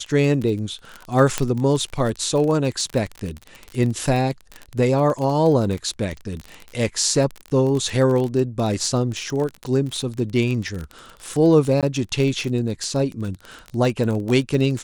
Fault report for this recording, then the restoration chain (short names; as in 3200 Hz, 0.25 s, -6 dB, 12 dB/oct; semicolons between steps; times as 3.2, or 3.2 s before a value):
crackle 27/s -24 dBFS
1.38 pop -5 dBFS
11.81–11.83 gap 17 ms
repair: de-click; interpolate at 11.81, 17 ms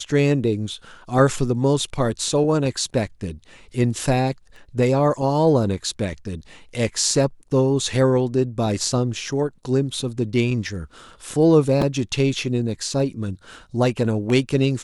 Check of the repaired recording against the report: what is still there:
none